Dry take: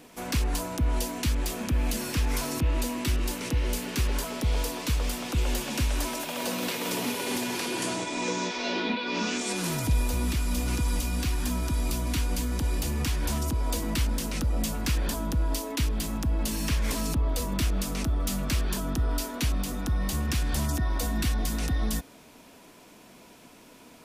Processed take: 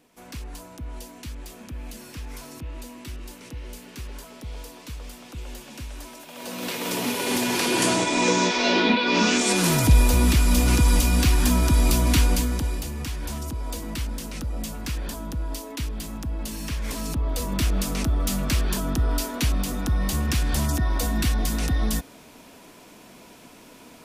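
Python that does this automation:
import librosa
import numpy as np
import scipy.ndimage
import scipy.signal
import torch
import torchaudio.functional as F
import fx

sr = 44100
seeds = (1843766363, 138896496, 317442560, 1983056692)

y = fx.gain(x, sr, db=fx.line((6.25, -10.0), (6.71, 1.0), (7.82, 9.0), (12.25, 9.0), (12.9, -3.0), (16.73, -3.0), (17.73, 4.0)))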